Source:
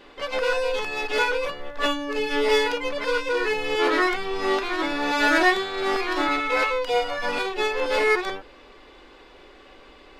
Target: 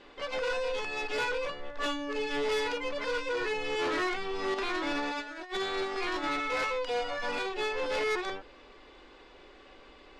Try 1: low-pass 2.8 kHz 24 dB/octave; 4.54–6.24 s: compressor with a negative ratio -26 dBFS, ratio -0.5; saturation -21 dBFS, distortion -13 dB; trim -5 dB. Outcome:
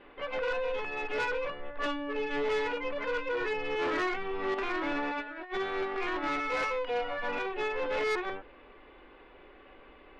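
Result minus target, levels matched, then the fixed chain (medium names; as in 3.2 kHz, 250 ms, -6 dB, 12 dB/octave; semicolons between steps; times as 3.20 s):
8 kHz band -8.0 dB
low-pass 8.5 kHz 24 dB/octave; 4.54–6.24 s: compressor with a negative ratio -26 dBFS, ratio -0.5; saturation -21 dBFS, distortion -12 dB; trim -5 dB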